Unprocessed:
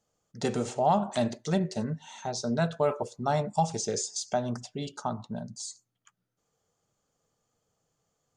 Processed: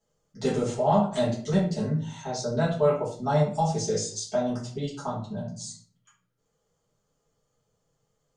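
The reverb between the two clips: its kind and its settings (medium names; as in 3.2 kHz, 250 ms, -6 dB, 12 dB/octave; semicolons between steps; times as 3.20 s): simulated room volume 39 m³, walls mixed, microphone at 1.5 m; trim -7.5 dB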